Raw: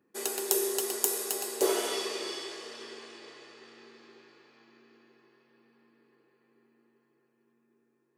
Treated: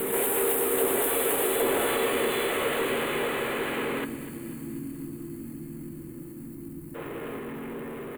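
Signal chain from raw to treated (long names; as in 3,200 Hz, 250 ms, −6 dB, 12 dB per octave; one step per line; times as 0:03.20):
pitch-shifted copies added −7 semitones −10 dB, −4 semitones −16 dB, +3 semitones −1 dB
downward compressor, threshold −34 dBFS, peak gain reduction 15.5 dB
power curve on the samples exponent 0.35
backwards echo 795 ms −3.5 dB
gain on a spectral selection 0:04.05–0:06.95, 350–4,200 Hz −24 dB
Butterworth band-reject 5,400 Hz, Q 0.82
feedback echo at a low word length 245 ms, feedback 55%, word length 9 bits, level −14.5 dB
level −3.5 dB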